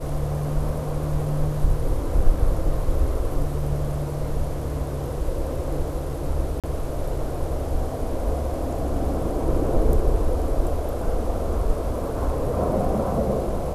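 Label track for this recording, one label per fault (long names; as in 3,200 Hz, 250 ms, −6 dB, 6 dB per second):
6.600000	6.640000	drop-out 37 ms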